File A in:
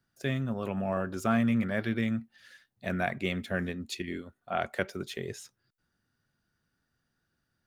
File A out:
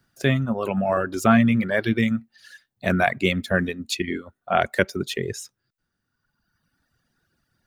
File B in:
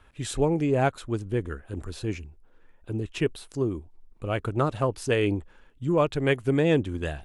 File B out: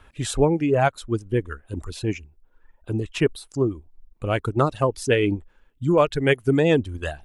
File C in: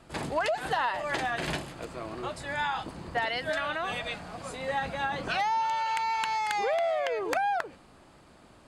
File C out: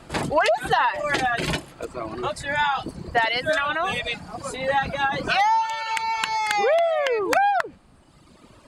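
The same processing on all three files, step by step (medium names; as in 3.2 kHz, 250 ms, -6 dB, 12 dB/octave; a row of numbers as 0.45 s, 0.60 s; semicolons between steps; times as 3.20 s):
reverb removal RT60 1.6 s; normalise loudness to -23 LUFS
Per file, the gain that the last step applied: +11.0 dB, +5.5 dB, +9.0 dB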